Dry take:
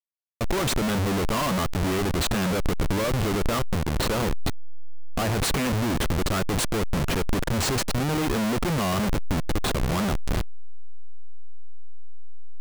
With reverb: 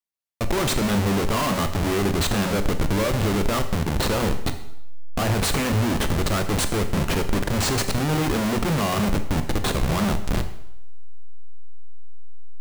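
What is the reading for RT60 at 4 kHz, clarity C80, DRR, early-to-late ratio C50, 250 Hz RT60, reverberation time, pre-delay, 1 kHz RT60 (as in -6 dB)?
0.75 s, 13.5 dB, 8.0 dB, 11.0 dB, 0.70 s, 0.75 s, 16 ms, 0.80 s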